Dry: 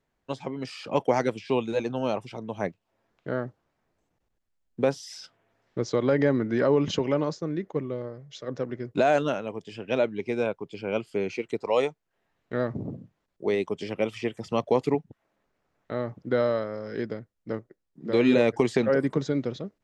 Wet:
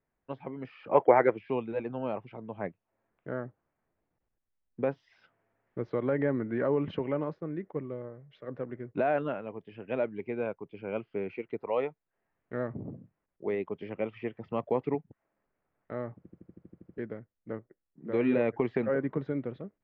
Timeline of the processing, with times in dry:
0.9–1.38 spectral gain 320–2400 Hz +9 dB
16.18 stutter in place 0.08 s, 10 plays
whole clip: LPF 2400 Hz 24 dB/oct; gain -6 dB

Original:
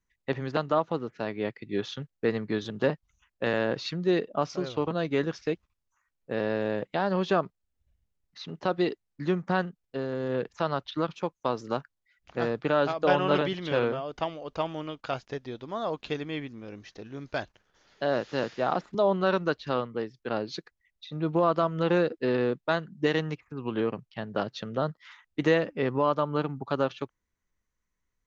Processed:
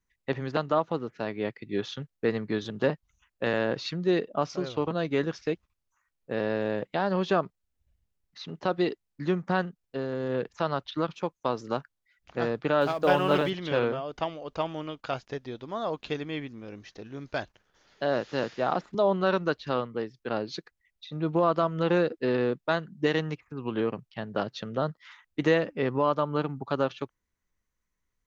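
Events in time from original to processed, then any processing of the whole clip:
12.81–13.5 G.711 law mismatch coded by mu

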